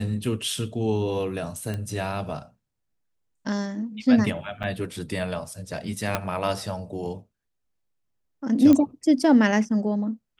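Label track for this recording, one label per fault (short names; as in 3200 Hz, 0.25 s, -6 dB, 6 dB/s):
1.740000	1.740000	pop -19 dBFS
4.630000	4.640000	gap 6.8 ms
6.150000	6.150000	pop -8 dBFS
8.730000	8.730000	pop -9 dBFS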